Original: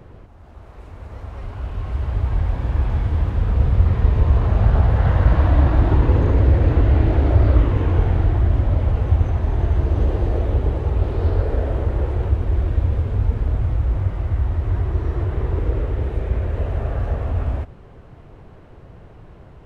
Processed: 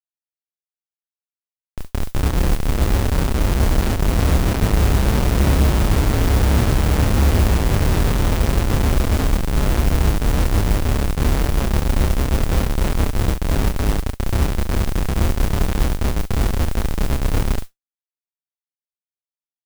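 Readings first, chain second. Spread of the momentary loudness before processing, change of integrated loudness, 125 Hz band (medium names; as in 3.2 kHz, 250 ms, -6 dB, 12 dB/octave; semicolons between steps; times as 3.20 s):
8 LU, 0.0 dB, -1.5 dB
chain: Schmitt trigger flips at -16 dBFS; loudspeakers at several distances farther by 10 m -1 dB, 24 m -8 dB; modulation noise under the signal 22 dB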